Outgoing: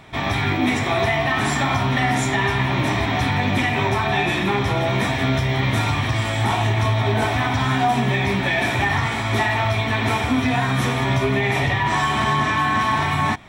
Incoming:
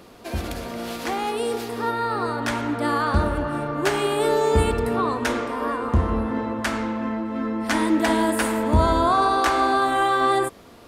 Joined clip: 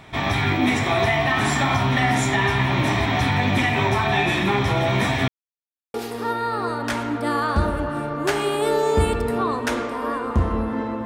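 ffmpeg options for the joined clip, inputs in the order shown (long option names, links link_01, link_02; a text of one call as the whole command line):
ffmpeg -i cue0.wav -i cue1.wav -filter_complex "[0:a]apad=whole_dur=11.05,atrim=end=11.05,asplit=2[link_01][link_02];[link_01]atrim=end=5.28,asetpts=PTS-STARTPTS,afade=type=out:start_time=5.276:duration=0.004:curve=hsin[link_03];[link_02]atrim=start=5.28:end=5.94,asetpts=PTS-STARTPTS,volume=0[link_04];[1:a]atrim=start=1.52:end=6.63,asetpts=PTS-STARTPTS,afade=type=in:duration=0.004:curve=hsin[link_05];[link_03][link_04][link_05]concat=n=3:v=0:a=1" out.wav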